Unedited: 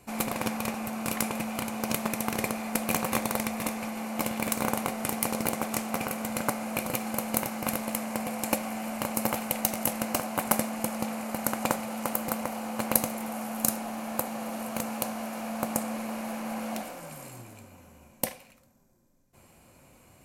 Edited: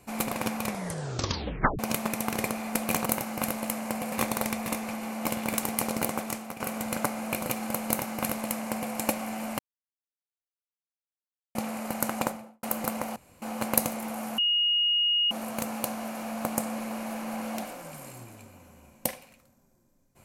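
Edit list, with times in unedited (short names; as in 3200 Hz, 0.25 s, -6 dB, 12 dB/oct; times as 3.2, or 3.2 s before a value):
0.64 tape stop 1.15 s
4.57–5.07 cut
5.57–6.04 fade out, to -12.5 dB
7.31–8.37 copy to 3.06
9.03–10.99 mute
11.58–12.07 studio fade out
12.6 insert room tone 0.26 s
13.56–14.49 bleep 2870 Hz -21.5 dBFS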